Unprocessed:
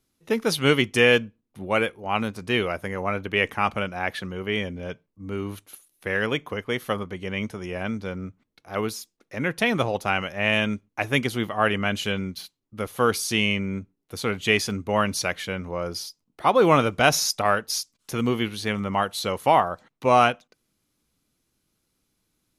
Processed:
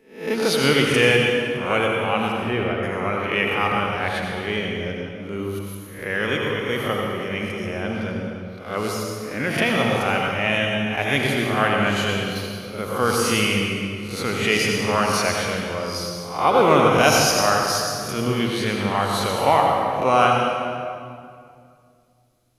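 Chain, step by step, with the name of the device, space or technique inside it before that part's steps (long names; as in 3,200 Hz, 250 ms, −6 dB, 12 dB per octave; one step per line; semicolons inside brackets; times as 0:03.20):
peak hold with a rise ahead of every peak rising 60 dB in 0.47 s
0:02.32–0:02.83: Bessel low-pass filter 1,700 Hz
stairwell (convolution reverb RT60 2.3 s, pre-delay 73 ms, DRR 0 dB)
level −1 dB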